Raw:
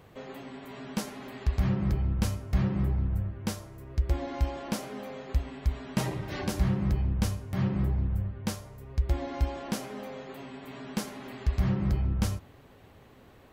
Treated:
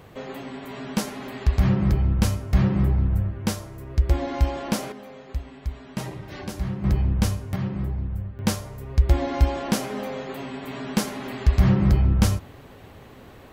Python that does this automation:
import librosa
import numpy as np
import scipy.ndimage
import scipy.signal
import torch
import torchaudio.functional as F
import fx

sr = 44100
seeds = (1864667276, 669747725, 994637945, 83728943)

y = fx.gain(x, sr, db=fx.steps((0.0, 7.0), (4.92, -2.0), (6.84, 6.0), (7.56, 0.0), (8.39, 9.0)))